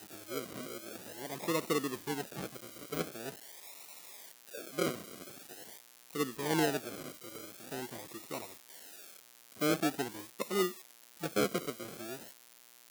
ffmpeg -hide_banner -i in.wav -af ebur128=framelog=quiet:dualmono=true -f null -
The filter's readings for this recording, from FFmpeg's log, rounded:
Integrated loudness:
  I:         -34.5 LUFS
  Threshold: -45.2 LUFS
Loudness range:
  LRA:         5.7 LU
  Threshold: -55.1 LUFS
  LRA low:   -38.4 LUFS
  LRA high:  -32.7 LUFS